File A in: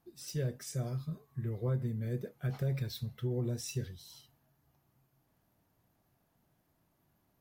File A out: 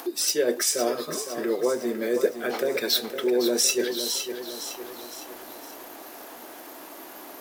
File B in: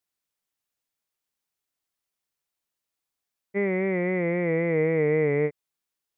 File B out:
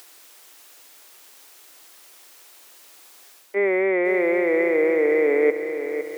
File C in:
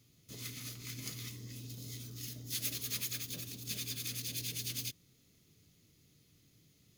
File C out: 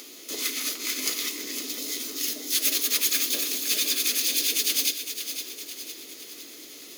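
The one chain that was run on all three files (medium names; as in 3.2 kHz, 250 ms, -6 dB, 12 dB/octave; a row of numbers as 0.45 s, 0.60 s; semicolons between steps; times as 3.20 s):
reverse; compression 8:1, threshold -36 dBFS; reverse; steep high-pass 290 Hz 36 dB/octave; in parallel at +2.5 dB: upward compressor, threshold -46 dBFS; on the sum: bit-crushed delay 509 ms, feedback 55%, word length 10-bit, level -9 dB; peak normalisation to -9 dBFS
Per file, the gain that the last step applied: +15.5 dB, +12.5 dB, +9.5 dB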